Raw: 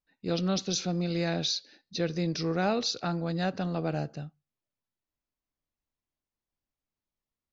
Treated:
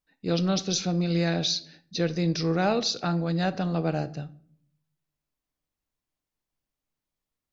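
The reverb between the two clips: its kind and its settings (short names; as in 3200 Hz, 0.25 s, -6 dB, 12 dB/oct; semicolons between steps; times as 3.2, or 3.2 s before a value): shoebox room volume 830 m³, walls furnished, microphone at 0.49 m; gain +3 dB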